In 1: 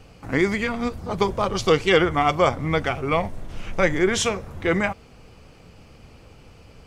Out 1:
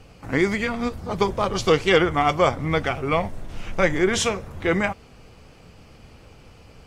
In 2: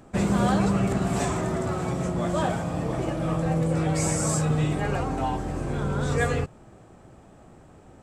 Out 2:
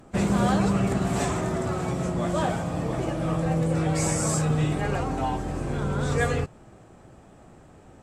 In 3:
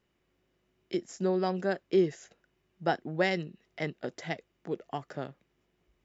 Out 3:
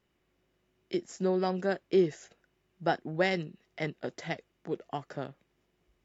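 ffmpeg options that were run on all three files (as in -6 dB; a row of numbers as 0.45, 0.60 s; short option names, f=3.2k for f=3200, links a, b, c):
-ar 44100 -c:a aac -b:a 64k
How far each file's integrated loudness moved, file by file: 0.0, 0.0, 0.0 LU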